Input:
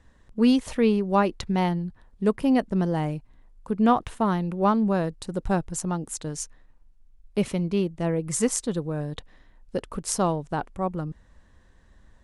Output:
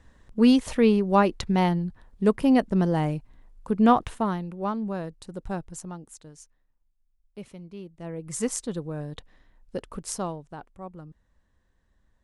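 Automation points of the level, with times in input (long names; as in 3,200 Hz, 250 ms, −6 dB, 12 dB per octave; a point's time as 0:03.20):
0:04.04 +1.5 dB
0:04.51 −7.5 dB
0:05.70 −7.5 dB
0:06.42 −16.5 dB
0:07.78 −16.5 dB
0:08.45 −4 dB
0:10.03 −4 dB
0:10.56 −12.5 dB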